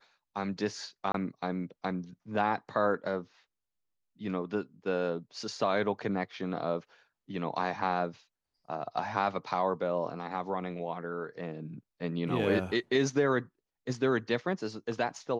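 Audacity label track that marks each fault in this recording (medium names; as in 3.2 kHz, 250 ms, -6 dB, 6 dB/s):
1.120000	1.140000	dropout 23 ms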